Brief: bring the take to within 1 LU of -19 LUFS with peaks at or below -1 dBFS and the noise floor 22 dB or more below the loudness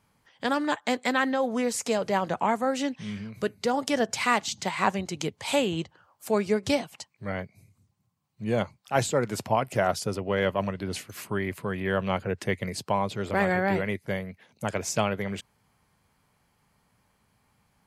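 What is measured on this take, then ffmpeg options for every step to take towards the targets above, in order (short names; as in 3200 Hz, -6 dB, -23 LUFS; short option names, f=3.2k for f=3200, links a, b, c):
loudness -28.0 LUFS; peak -8.0 dBFS; loudness target -19.0 LUFS
-> -af "volume=9dB,alimiter=limit=-1dB:level=0:latency=1"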